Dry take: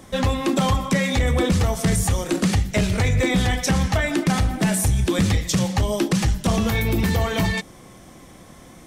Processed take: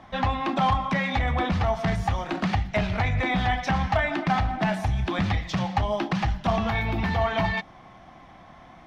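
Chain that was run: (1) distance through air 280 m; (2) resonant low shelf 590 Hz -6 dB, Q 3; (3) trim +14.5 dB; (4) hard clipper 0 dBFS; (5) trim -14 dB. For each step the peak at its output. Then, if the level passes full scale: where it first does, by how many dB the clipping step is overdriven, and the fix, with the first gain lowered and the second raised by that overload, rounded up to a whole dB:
-12.0 dBFS, -11.0 dBFS, +3.5 dBFS, 0.0 dBFS, -14.0 dBFS; step 3, 3.5 dB; step 3 +10.5 dB, step 5 -10 dB

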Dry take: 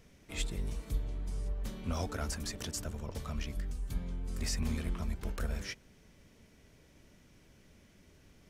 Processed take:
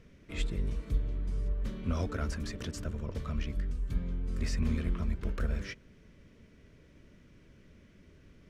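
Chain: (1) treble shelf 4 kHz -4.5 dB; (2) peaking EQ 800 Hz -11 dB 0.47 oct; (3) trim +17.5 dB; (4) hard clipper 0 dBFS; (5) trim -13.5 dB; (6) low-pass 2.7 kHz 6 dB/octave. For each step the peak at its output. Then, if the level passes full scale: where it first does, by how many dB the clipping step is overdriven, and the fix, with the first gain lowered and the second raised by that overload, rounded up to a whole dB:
-21.5 dBFS, -22.5 dBFS, -5.0 dBFS, -5.0 dBFS, -18.5 dBFS, -19.0 dBFS; nothing clips

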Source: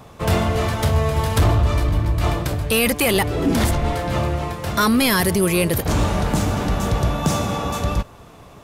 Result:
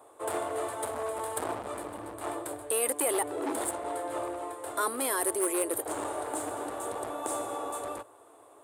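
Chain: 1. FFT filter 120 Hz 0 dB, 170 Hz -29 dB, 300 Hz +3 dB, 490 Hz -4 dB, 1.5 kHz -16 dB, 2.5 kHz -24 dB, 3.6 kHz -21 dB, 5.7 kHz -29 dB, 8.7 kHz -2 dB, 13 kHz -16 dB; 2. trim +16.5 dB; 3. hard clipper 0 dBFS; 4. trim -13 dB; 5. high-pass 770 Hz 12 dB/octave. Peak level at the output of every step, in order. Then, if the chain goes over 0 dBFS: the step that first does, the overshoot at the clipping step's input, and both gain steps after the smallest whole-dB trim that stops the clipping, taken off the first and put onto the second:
-7.5 dBFS, +9.0 dBFS, 0.0 dBFS, -13.0 dBFS, -13.0 dBFS; step 2, 9.0 dB; step 2 +7.5 dB, step 4 -4 dB

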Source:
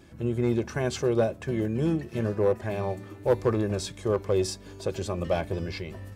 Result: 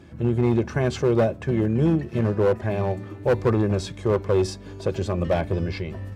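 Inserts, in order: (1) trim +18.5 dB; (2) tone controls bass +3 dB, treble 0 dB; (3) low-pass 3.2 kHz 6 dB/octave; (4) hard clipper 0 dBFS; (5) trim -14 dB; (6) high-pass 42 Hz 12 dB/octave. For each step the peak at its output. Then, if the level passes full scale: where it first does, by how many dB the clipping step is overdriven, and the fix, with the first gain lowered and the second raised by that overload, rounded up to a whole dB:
+9.0 dBFS, +9.0 dBFS, +9.0 dBFS, 0.0 dBFS, -14.0 dBFS, -10.5 dBFS; step 1, 9.0 dB; step 1 +9.5 dB, step 5 -5 dB

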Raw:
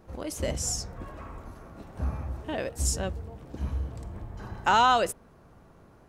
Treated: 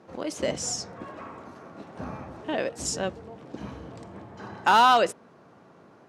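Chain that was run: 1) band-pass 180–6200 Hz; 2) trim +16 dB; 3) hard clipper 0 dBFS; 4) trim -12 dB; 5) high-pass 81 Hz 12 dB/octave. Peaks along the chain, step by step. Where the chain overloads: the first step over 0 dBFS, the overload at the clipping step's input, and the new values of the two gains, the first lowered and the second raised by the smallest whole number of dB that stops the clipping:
-11.0 dBFS, +5.0 dBFS, 0.0 dBFS, -12.0 dBFS, -10.5 dBFS; step 2, 5.0 dB; step 2 +11 dB, step 4 -7 dB

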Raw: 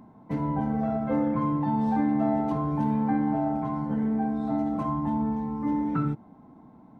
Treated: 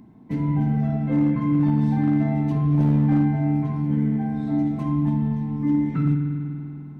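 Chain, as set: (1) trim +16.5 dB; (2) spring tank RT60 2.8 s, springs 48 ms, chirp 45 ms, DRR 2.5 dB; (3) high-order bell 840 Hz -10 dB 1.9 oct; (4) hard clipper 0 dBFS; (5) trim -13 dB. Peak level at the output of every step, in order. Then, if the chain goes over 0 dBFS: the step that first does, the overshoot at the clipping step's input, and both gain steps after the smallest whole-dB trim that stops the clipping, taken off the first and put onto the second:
+2.0 dBFS, +4.5 dBFS, +4.0 dBFS, 0.0 dBFS, -13.0 dBFS; step 1, 4.0 dB; step 1 +12.5 dB, step 5 -9 dB

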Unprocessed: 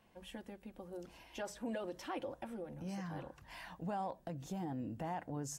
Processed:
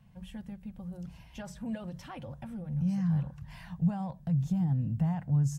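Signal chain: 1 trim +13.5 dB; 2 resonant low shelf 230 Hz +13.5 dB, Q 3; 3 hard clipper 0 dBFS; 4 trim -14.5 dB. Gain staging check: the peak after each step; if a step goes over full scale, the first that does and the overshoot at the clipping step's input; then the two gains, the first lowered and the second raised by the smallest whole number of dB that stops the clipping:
-16.5 dBFS, -4.0 dBFS, -4.0 dBFS, -18.5 dBFS; nothing clips

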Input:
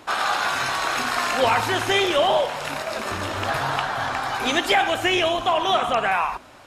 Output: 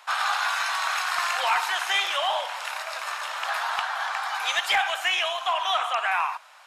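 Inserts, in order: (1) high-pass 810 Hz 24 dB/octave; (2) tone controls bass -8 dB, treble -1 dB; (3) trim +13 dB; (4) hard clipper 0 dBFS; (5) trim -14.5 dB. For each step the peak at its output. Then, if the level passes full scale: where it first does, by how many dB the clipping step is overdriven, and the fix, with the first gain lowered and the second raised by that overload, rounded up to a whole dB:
-8.5 dBFS, -8.5 dBFS, +4.5 dBFS, 0.0 dBFS, -14.5 dBFS; step 3, 4.5 dB; step 3 +8 dB, step 5 -9.5 dB

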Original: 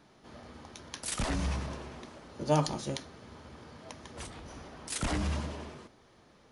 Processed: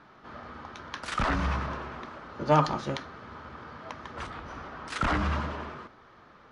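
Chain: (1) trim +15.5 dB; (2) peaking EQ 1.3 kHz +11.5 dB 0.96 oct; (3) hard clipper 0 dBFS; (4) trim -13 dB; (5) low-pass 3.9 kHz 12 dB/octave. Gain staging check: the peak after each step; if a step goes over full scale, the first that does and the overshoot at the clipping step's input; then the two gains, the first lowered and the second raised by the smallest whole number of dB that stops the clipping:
+0.5 dBFS, +4.0 dBFS, 0.0 dBFS, -13.0 dBFS, -12.5 dBFS; step 1, 4.0 dB; step 1 +11.5 dB, step 4 -9 dB

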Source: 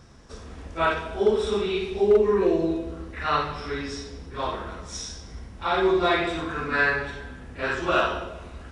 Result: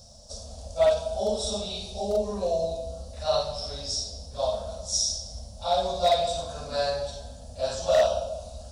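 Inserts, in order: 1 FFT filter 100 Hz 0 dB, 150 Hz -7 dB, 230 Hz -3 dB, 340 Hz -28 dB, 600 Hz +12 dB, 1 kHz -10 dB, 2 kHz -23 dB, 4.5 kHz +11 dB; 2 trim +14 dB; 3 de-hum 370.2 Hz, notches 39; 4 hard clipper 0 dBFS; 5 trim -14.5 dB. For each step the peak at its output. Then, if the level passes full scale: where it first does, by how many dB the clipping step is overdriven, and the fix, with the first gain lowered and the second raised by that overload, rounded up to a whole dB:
-7.0 dBFS, +7.0 dBFS, +7.0 dBFS, 0.0 dBFS, -14.5 dBFS; step 2, 7.0 dB; step 2 +7 dB, step 5 -7.5 dB

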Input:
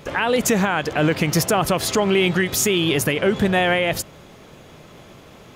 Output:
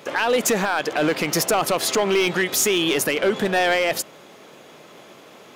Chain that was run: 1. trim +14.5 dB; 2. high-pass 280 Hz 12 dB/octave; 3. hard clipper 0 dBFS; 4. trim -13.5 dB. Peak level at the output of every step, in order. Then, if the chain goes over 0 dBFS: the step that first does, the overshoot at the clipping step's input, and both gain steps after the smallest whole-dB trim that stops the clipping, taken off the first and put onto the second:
+6.0 dBFS, +8.5 dBFS, 0.0 dBFS, -13.5 dBFS; step 1, 8.5 dB; step 1 +5.5 dB, step 4 -4.5 dB

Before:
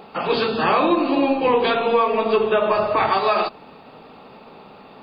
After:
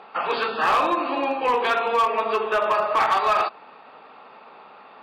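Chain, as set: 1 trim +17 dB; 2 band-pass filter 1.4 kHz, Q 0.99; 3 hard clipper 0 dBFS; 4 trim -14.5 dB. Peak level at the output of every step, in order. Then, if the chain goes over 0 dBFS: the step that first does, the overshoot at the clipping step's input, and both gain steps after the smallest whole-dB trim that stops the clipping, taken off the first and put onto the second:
+10.5 dBFS, +8.5 dBFS, 0.0 dBFS, -14.5 dBFS; step 1, 8.5 dB; step 1 +8 dB, step 4 -5.5 dB

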